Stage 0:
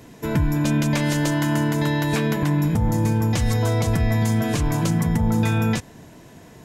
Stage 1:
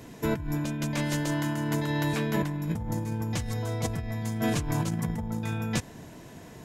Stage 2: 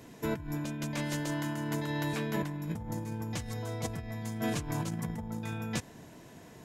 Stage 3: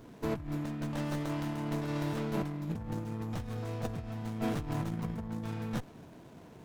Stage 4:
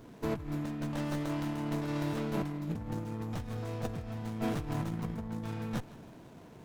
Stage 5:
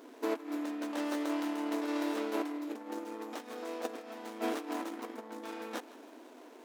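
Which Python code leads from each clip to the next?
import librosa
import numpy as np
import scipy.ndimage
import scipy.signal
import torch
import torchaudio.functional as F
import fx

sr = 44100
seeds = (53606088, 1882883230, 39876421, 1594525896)

y1 = fx.over_compress(x, sr, threshold_db=-23.0, ratio=-0.5)
y1 = y1 * 10.0 ** (-5.0 / 20.0)
y2 = fx.low_shelf(y1, sr, hz=96.0, db=-5.5)
y2 = y2 * 10.0 ** (-4.5 / 20.0)
y3 = fx.running_max(y2, sr, window=17)
y4 = fx.echo_feedback(y3, sr, ms=160, feedback_pct=54, wet_db=-18.5)
y5 = fx.brickwall_highpass(y4, sr, low_hz=240.0)
y5 = y5 * 10.0 ** (2.0 / 20.0)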